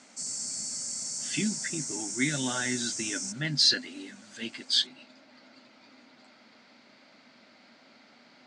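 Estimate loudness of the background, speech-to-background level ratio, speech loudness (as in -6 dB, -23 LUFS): -33.0 LUFS, 4.0 dB, -29.0 LUFS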